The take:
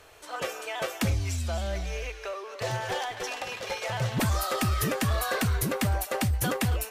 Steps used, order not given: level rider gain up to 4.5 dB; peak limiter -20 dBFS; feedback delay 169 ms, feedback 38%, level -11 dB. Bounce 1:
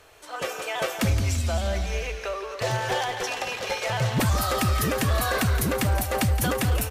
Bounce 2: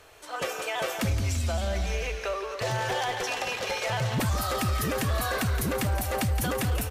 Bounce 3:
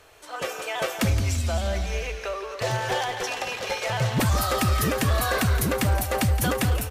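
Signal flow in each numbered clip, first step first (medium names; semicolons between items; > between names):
feedback delay > peak limiter > level rider; level rider > feedback delay > peak limiter; peak limiter > level rider > feedback delay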